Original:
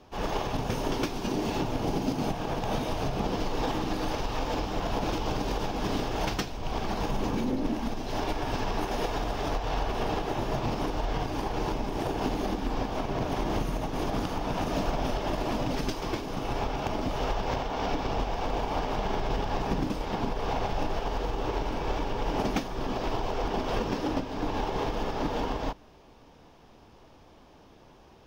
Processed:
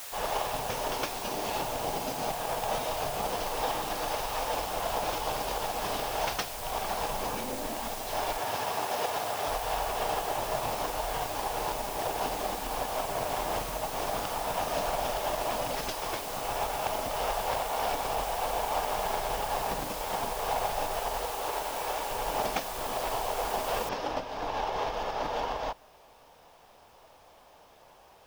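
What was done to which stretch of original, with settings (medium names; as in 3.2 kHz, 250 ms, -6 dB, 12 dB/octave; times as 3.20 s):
8.38–9.47 s: high-pass 83 Hz 24 dB/octave
21.25–22.11 s: bass shelf 170 Hz -9.5 dB
23.89 s: noise floor step -42 dB -69 dB
whole clip: resonant low shelf 430 Hz -10 dB, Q 1.5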